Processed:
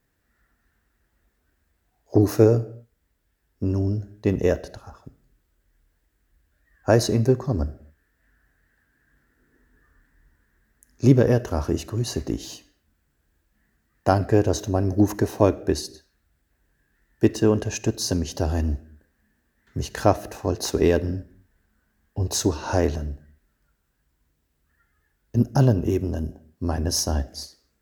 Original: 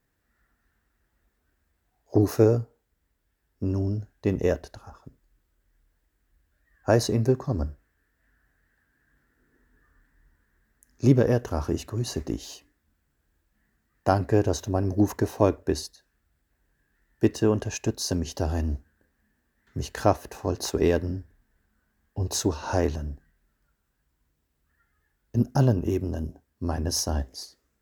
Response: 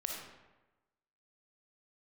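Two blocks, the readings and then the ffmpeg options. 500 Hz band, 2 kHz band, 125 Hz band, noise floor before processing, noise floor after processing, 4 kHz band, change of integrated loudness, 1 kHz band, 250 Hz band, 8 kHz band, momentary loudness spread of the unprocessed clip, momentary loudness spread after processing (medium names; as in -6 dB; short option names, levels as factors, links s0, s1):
+3.0 dB, +3.0 dB, +3.0 dB, -75 dBFS, -72 dBFS, +3.0 dB, +3.0 dB, +2.0 dB, +3.0 dB, +3.0 dB, 14 LU, 14 LU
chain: -filter_complex "[0:a]asplit=2[s0][s1];[s1]asuperstop=centerf=1000:order=4:qfactor=2[s2];[1:a]atrim=start_sample=2205,afade=t=out:st=0.32:d=0.01,atrim=end_sample=14553[s3];[s2][s3]afir=irnorm=-1:irlink=0,volume=0.168[s4];[s0][s4]amix=inputs=2:normalize=0,volume=1.26"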